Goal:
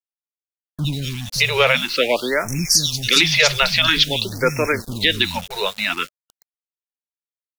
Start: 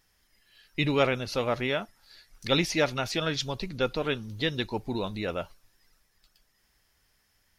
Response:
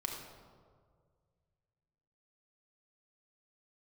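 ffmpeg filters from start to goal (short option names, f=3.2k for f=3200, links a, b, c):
-filter_complex "[0:a]acrossover=split=220|4000[a][b][c];[c]adelay=60[d];[b]adelay=620[e];[a][e][d]amix=inputs=3:normalize=0,acrossover=split=120|610|2100[f][g][h][i];[i]dynaudnorm=f=330:g=9:m=13dB[j];[f][g][h][j]amix=inputs=4:normalize=0,bandreject=f=770:w=12,aeval=exprs='val(0)*gte(abs(val(0)),0.01)':c=same,alimiter=level_in=11.5dB:limit=-1dB:release=50:level=0:latency=1,afftfilt=real='re*(1-between(b*sr/1024,270*pow(3800/270,0.5+0.5*sin(2*PI*0.49*pts/sr))/1.41,270*pow(3800/270,0.5+0.5*sin(2*PI*0.49*pts/sr))*1.41))':imag='im*(1-between(b*sr/1024,270*pow(3800/270,0.5+0.5*sin(2*PI*0.49*pts/sr))/1.41,270*pow(3800/270,0.5+0.5*sin(2*PI*0.49*pts/sr))*1.41))':win_size=1024:overlap=0.75,volume=-1.5dB"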